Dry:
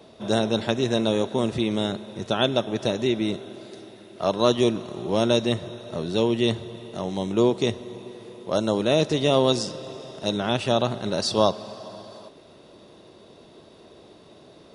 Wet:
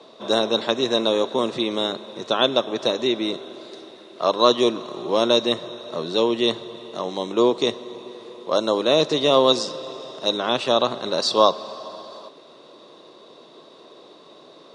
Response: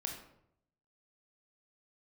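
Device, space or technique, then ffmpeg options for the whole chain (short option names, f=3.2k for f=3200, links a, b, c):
television speaker: -af "highpass=f=170:w=0.5412,highpass=f=170:w=1.3066,equalizer=f=200:t=q:w=4:g=-8,equalizer=f=510:t=q:w=4:g=4,equalizer=f=1.1k:t=q:w=4:g=9,equalizer=f=3.9k:t=q:w=4:g=7,lowpass=f=8.4k:w=0.5412,lowpass=f=8.4k:w=1.3066,volume=1dB"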